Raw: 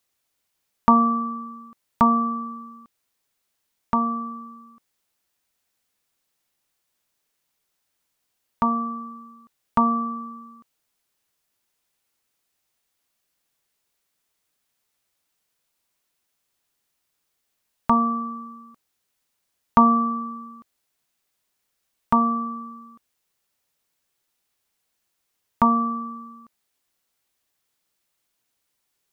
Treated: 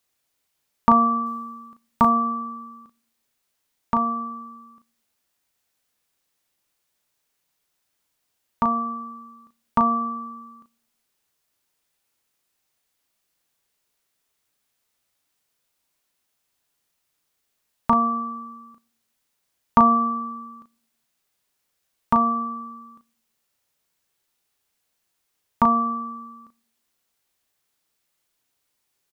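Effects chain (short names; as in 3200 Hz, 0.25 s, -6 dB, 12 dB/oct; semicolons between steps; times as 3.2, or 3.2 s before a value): 1.26–2.06 companded quantiser 8-bit; doubler 36 ms -7 dB; on a send: reverb RT60 0.65 s, pre-delay 3 ms, DRR 21 dB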